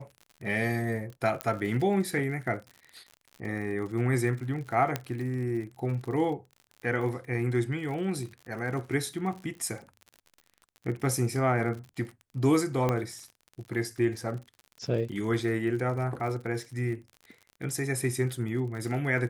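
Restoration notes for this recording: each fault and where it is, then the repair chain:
surface crackle 56 per second −38 dBFS
0:01.41: click −14 dBFS
0:04.96: click −13 dBFS
0:12.89: click −14 dBFS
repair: click removal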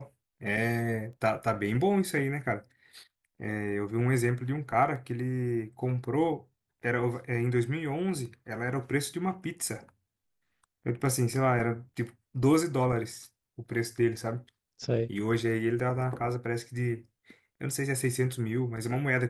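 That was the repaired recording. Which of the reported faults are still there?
0:04.96: click

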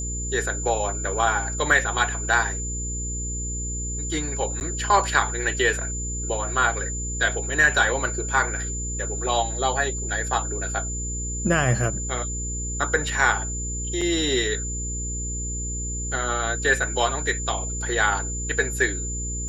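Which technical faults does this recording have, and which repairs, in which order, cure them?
mains hum 60 Hz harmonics 8 −31 dBFS
whistle 7,100 Hz −30 dBFS
0:04.60–0:04.61: drop-out 9.9 ms
0:14.01: drop-out 4.9 ms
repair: hum removal 60 Hz, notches 8
notch filter 7,100 Hz, Q 30
repair the gap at 0:04.60, 9.9 ms
repair the gap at 0:14.01, 4.9 ms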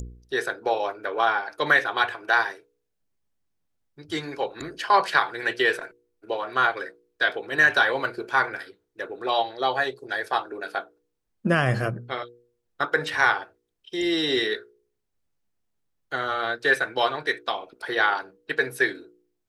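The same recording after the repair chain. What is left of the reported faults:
none of them is left

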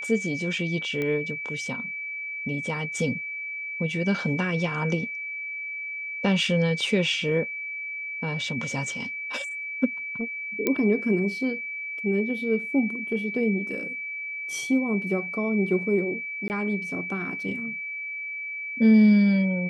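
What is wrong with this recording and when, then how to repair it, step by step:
whistle 2,300 Hz −31 dBFS
0:01.02: click −17 dBFS
0:10.67: click −10 dBFS
0:16.48–0:16.50: drop-out 19 ms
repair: click removal
notch filter 2,300 Hz, Q 30
repair the gap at 0:16.48, 19 ms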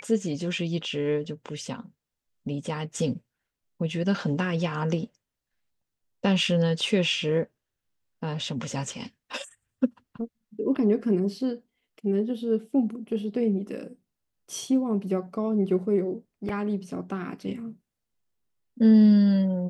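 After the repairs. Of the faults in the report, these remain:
none of them is left

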